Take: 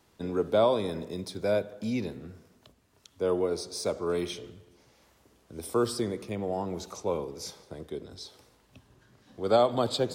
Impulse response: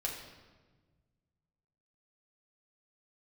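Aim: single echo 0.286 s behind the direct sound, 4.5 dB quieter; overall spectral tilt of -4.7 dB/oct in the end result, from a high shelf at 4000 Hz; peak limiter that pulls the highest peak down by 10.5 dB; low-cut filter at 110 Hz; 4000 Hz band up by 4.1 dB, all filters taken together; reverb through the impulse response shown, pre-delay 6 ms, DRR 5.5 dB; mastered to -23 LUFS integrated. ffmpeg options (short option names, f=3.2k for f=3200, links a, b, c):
-filter_complex "[0:a]highpass=110,highshelf=f=4k:g=-4.5,equalizer=f=4k:t=o:g=7.5,alimiter=limit=-21dB:level=0:latency=1,aecho=1:1:286:0.596,asplit=2[a][b];[1:a]atrim=start_sample=2205,adelay=6[c];[b][c]afir=irnorm=-1:irlink=0,volume=-8dB[d];[a][d]amix=inputs=2:normalize=0,volume=8.5dB"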